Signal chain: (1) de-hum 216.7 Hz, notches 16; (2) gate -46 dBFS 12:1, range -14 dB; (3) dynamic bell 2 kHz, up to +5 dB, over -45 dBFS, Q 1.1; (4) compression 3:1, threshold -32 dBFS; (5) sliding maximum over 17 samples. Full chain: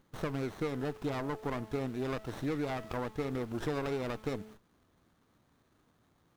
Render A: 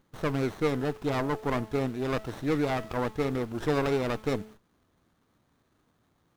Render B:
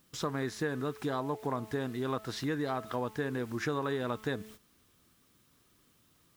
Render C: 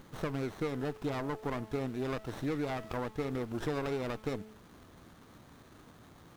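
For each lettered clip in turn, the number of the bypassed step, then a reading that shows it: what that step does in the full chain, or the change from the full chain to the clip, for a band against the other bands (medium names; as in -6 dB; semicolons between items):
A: 4, mean gain reduction 5.5 dB; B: 5, distortion -5 dB; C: 2, momentary loudness spread change +18 LU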